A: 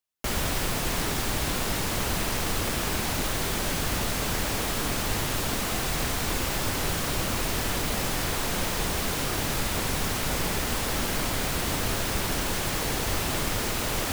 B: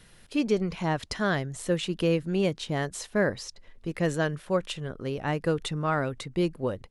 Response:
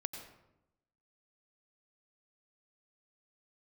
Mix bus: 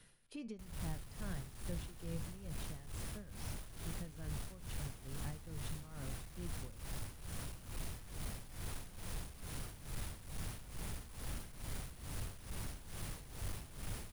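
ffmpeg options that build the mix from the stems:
-filter_complex "[0:a]asoftclip=type=hard:threshold=-32dB,acrusher=bits=6:mix=0:aa=0.000001,adelay=350,volume=-4.5dB[link_01];[1:a]flanger=delay=7:depth=4.2:regen=78:speed=0.41:shape=triangular,volume=-4.5dB[link_02];[link_01][link_02]amix=inputs=2:normalize=0,equalizer=frequency=9700:width=5.3:gain=9,acrossover=split=160[link_03][link_04];[link_04]acompressor=threshold=-46dB:ratio=10[link_05];[link_03][link_05]amix=inputs=2:normalize=0,tremolo=f=2.3:d=0.76"

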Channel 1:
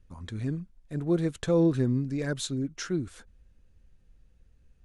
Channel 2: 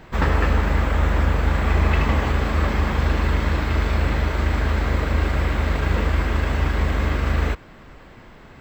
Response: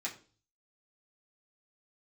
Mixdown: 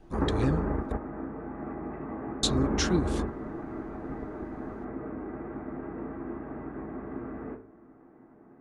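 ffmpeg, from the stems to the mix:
-filter_complex "[0:a]volume=2.5dB,asplit=3[link_01][link_02][link_03];[link_01]atrim=end=0.92,asetpts=PTS-STARTPTS,afade=type=out:start_time=0.916:duration=0.004:curve=hsin[link_04];[link_02]atrim=start=0.92:end=2.43,asetpts=PTS-STARTPTS,volume=0[link_05];[link_03]atrim=start=2.43,asetpts=PTS-STARTPTS,afade=type=in:duration=0.004:curve=hsin[link_06];[link_04][link_05][link_06]concat=n=3:v=0:a=1,asplit=2[link_07][link_08];[1:a]lowpass=frequency=1300:width=0.5412,lowpass=frequency=1300:width=1.3066,acompressor=threshold=-20dB:ratio=2,equalizer=frequency=300:width=0.8:gain=12.5,volume=-11.5dB,asplit=2[link_09][link_10];[link_10]volume=-6dB[link_11];[link_08]apad=whole_len=379362[link_12];[link_09][link_12]sidechaingate=range=-19dB:threshold=-49dB:ratio=16:detection=peak[link_13];[2:a]atrim=start_sample=2205[link_14];[link_11][link_14]afir=irnorm=-1:irlink=0[link_15];[link_07][link_13][link_15]amix=inputs=3:normalize=0,equalizer=frequency=3600:width=0.7:gain=7"

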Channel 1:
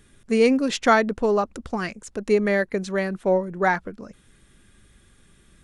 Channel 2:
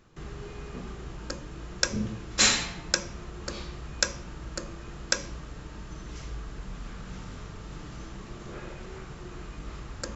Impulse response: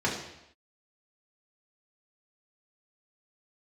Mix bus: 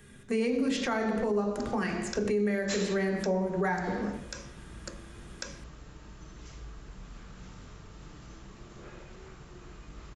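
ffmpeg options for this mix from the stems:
-filter_complex "[0:a]volume=-4.5dB,asplit=2[link_01][link_02];[link_02]volume=-5.5dB[link_03];[1:a]adelay=300,volume=-7dB[link_04];[2:a]atrim=start_sample=2205[link_05];[link_03][link_05]afir=irnorm=-1:irlink=0[link_06];[link_01][link_04][link_06]amix=inputs=3:normalize=0,acrossover=split=220|7800[link_07][link_08][link_09];[link_07]acompressor=threshold=-34dB:ratio=4[link_10];[link_08]acompressor=threshold=-27dB:ratio=4[link_11];[link_09]acompressor=threshold=-56dB:ratio=4[link_12];[link_10][link_11][link_12]amix=inputs=3:normalize=0,highshelf=frequency=8000:gain=4,alimiter=limit=-20.5dB:level=0:latency=1:release=41"

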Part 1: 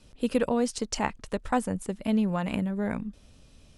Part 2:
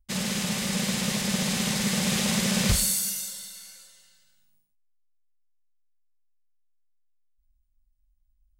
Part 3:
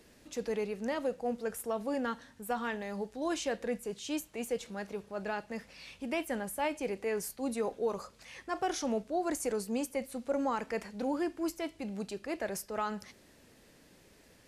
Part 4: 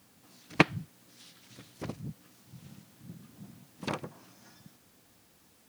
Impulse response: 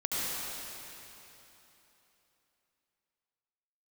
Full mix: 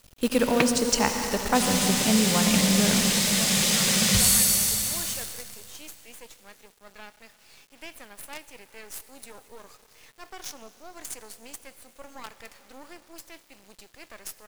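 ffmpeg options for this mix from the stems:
-filter_complex "[0:a]volume=-0.5dB,asplit=2[link_01][link_02];[link_02]volume=-9dB[link_03];[1:a]flanger=delay=3.1:depth=6.5:regen=63:speed=0.55:shape=sinusoidal,adelay=1450,volume=-1.5dB,asplit=2[link_04][link_05];[link_05]volume=-7.5dB[link_06];[2:a]highpass=frequency=880:poles=1,adelay=1700,volume=-5dB,asplit=2[link_07][link_08];[link_08]volume=-20dB[link_09];[3:a]volume=-5.5dB[link_10];[4:a]atrim=start_sample=2205[link_11];[link_03][link_06][link_09]amix=inputs=3:normalize=0[link_12];[link_12][link_11]afir=irnorm=-1:irlink=0[link_13];[link_01][link_04][link_07][link_10][link_13]amix=inputs=5:normalize=0,highshelf=frequency=2300:gain=8,acrusher=bits=6:dc=4:mix=0:aa=0.000001"

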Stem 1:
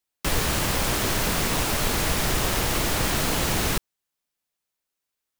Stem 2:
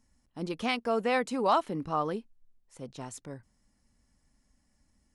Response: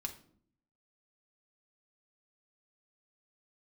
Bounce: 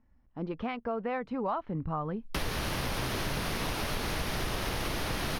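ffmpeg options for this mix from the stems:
-filter_complex "[0:a]lowpass=11000,adelay=2100,volume=-1.5dB[link_01];[1:a]lowpass=1800,asubboost=boost=9:cutoff=140,volume=2dB[link_02];[link_01][link_02]amix=inputs=2:normalize=0,equalizer=frequency=7600:width=3.2:gain=-15,acompressor=threshold=-31dB:ratio=3"

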